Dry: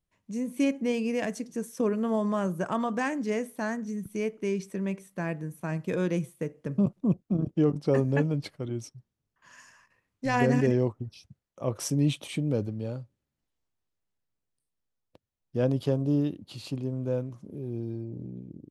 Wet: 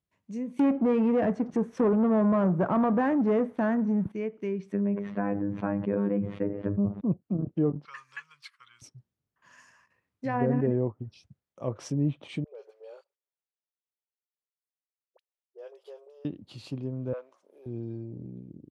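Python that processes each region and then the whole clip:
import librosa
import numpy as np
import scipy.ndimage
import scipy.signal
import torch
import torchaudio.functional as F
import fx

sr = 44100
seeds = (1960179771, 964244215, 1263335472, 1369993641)

y = fx.chain(x, sr, fx.high_shelf(hz=5400.0, db=8.0),
    fx.leveller(passes=3), at=(0.59, 4.12))
y = fx.chain(y, sr, fx.robotise(hz=101.0),
    fx.air_absorb(metres=230.0),
    fx.env_flatten(amount_pct=70), at=(4.72, 7.01))
y = fx.chain(y, sr, fx.ellip_highpass(hz=1100.0, order=4, stop_db=40),
    fx.band_squash(depth_pct=40), at=(7.85, 8.82))
y = fx.chain(y, sr, fx.level_steps(step_db=19),
    fx.brickwall_highpass(low_hz=370.0),
    fx.dispersion(late='highs', ms=42.0, hz=1100.0), at=(12.44, 16.25))
y = fx.chain(y, sr, fx.clip_hard(threshold_db=-23.5),
    fx.highpass(hz=540.0, slope=24), at=(17.13, 17.66))
y = scipy.signal.sosfilt(scipy.signal.butter(2, 61.0, 'highpass', fs=sr, output='sos'), y)
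y = fx.high_shelf(y, sr, hz=4100.0, db=-6.0)
y = fx.env_lowpass_down(y, sr, base_hz=1200.0, full_db=-23.0)
y = y * 10.0 ** (-2.0 / 20.0)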